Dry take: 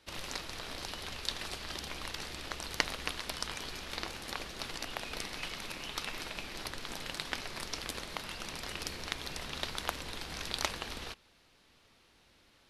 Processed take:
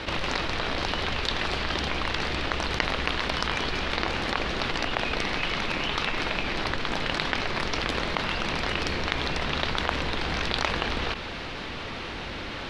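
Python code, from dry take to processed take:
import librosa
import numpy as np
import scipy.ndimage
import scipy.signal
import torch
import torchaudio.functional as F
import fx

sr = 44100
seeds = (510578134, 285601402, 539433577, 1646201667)

y = scipy.signal.sosfilt(scipy.signal.butter(2, 3200.0, 'lowpass', fs=sr, output='sos'), x)
y = fx.env_flatten(y, sr, amount_pct=70)
y = y * librosa.db_to_amplitude(4.5)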